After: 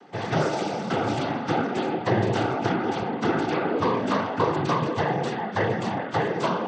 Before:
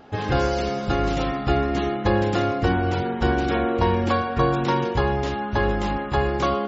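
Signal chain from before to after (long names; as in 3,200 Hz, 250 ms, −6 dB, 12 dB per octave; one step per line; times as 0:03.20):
cochlear-implant simulation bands 16
level −1.5 dB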